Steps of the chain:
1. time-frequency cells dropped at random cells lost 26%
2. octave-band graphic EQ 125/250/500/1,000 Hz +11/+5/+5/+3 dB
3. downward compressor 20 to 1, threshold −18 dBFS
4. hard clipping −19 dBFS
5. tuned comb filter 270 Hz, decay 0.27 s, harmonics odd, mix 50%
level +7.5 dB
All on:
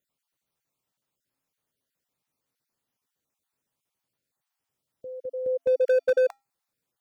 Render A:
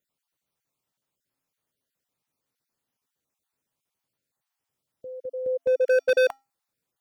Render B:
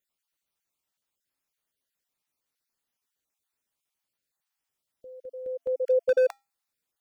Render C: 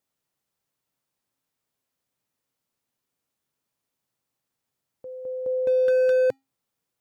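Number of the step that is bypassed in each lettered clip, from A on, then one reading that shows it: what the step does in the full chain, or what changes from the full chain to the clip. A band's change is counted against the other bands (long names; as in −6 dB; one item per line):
3, average gain reduction 2.5 dB
2, change in crest factor +2.0 dB
1, change in crest factor −2.5 dB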